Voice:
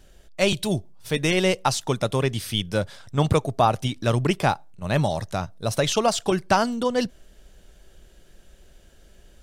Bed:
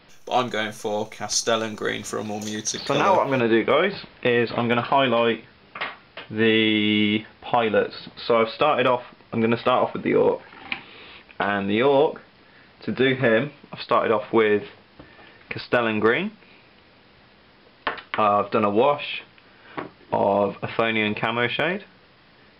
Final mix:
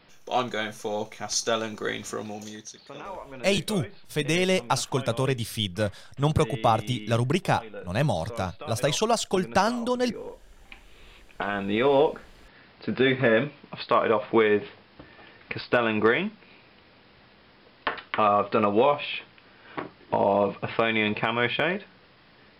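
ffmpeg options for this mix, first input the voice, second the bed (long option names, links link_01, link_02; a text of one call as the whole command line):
ffmpeg -i stem1.wav -i stem2.wav -filter_complex "[0:a]adelay=3050,volume=-2.5dB[link_01];[1:a]volume=14dB,afade=type=out:start_time=2.11:duration=0.66:silence=0.158489,afade=type=in:start_time=10.67:duration=1.37:silence=0.125893[link_02];[link_01][link_02]amix=inputs=2:normalize=0" out.wav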